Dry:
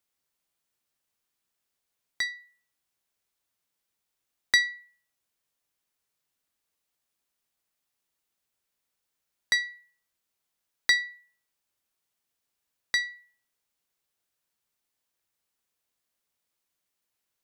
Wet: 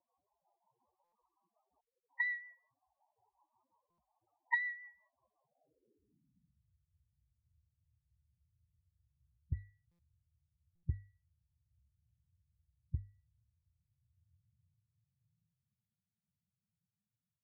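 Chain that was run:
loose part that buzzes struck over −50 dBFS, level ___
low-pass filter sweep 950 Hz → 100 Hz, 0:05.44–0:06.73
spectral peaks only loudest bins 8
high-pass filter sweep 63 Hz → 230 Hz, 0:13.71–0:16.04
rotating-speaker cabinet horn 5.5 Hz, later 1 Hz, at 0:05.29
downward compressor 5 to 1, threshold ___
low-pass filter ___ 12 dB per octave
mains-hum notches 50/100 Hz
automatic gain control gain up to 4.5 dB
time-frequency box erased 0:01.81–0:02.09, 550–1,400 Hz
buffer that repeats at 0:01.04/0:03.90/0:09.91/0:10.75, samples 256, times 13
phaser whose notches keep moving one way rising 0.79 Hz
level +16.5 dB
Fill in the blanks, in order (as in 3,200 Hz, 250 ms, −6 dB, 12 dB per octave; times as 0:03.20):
−21 dBFS, −52 dBFS, 2,800 Hz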